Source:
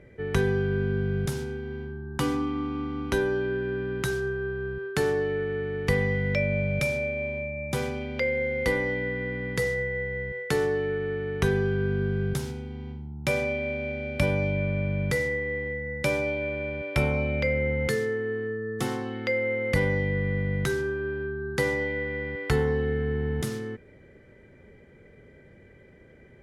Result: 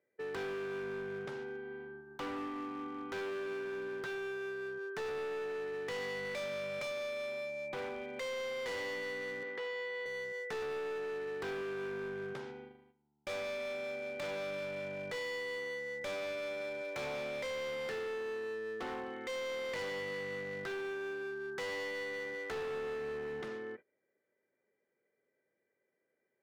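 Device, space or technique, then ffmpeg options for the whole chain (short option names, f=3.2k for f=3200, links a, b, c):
walkie-talkie: -filter_complex "[0:a]highpass=430,lowpass=2.2k,asoftclip=type=hard:threshold=-33.5dB,agate=range=-21dB:threshold=-46dB:ratio=16:detection=peak,asettb=1/sr,asplit=3[a][b][c];[a]atrim=end=9.434[d];[b]atrim=start=9.43:end=10.06,asetpts=PTS-STARTPTS,afade=t=in:d=0.004:c=qsin,afade=t=out:st=0.626:d=0.004:c=qsin,acrossover=split=240 3900:gain=0.141 1 0.158[e][f][g];[e][f][g]amix=inputs=3:normalize=0[h];[c]atrim=start=10.056[i];[d][h]acrossfade=d=0.004:c1=hsin:c2=qsin[j];[j][i]acrossfade=d=0.004:c1=qsin:c2=hsin,volume=-3.5dB"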